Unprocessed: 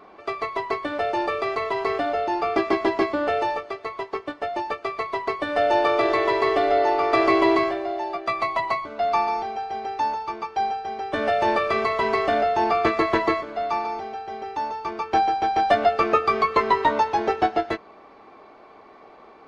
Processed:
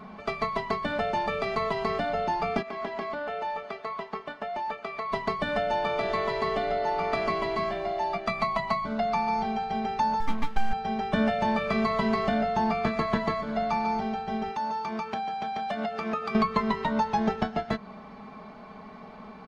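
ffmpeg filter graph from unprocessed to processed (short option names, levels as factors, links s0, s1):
-filter_complex "[0:a]asettb=1/sr,asplit=3[s0][s1][s2];[s0]atrim=end=2.624[s3];[s1]atrim=start=2.62:end=5.12,asetpts=PTS-STARTPTS,afade=t=in:d=0.004:c=qsin,afade=t=out:st=2.496:d=0.004:c=qsin,bass=f=250:g=-14,treble=f=4000:g=-7,acompressor=threshold=0.0282:ratio=6:attack=3.2:release=140:knee=1:detection=peak[s4];[s2]atrim=start=5.116[s5];[s3][s4]acrossfade=d=0.004:c1=hsin:c2=qsin[s6];[s6][s5]acrossfade=d=0.004:c1=qsin:c2=hsin,asettb=1/sr,asplit=3[s7][s8][s9];[s7]atrim=end=10.204[s10];[s8]atrim=start=10.2:end=10.73,asetpts=PTS-STARTPTS,afade=t=in:d=0.004:c=qsin,afade=t=out:st=0.526:d=0.004:c=qsin,lowpass=3600,aeval=exprs='max(val(0),0)':c=same,aecho=1:1:3.7:0.37,atrim=end_sample=23373[s11];[s9]atrim=start=10.726[s12];[s10][s11]acrossfade=d=0.004:c1=hsin:c2=qsin[s13];[s13][s12]acrossfade=d=0.004:c1=qsin:c2=hsin,asettb=1/sr,asplit=3[s14][s15][s16];[s14]atrim=end=14.514[s17];[s15]atrim=start=14.51:end=16.35,asetpts=PTS-STARTPTS,afade=t=in:d=0.004:c=qsin,afade=t=out:st=1.836:d=0.004:c=qsin,highpass=f=330:p=1,acompressor=threshold=0.0282:ratio=4:attack=3.2:release=140:knee=1:detection=peak[s18];[s16]atrim=start=16.346[s19];[s17][s18]acrossfade=d=0.004:c1=hsin:c2=qsin[s20];[s20][s19]acrossfade=d=0.004:c1=qsin:c2=hsin,acompressor=threshold=0.0501:ratio=6,lowshelf=f=260:t=q:w=3:g=8.5,aecho=1:1:4.7:0.5,volume=1.19"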